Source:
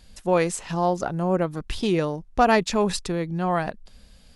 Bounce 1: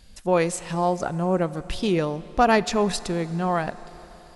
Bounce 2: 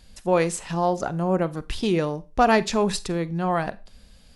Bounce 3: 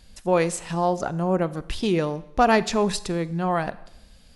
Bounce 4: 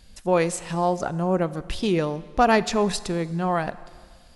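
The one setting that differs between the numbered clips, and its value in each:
Schroeder reverb, RT60: 4.3, 0.3, 0.82, 1.8 s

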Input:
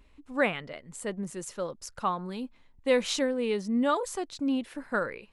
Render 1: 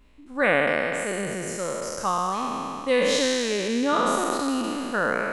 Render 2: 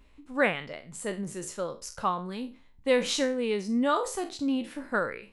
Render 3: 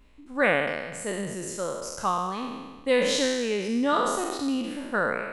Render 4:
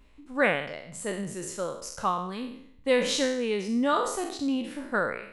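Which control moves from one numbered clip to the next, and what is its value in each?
spectral trails, RT60: 3.1, 0.31, 1.38, 0.66 s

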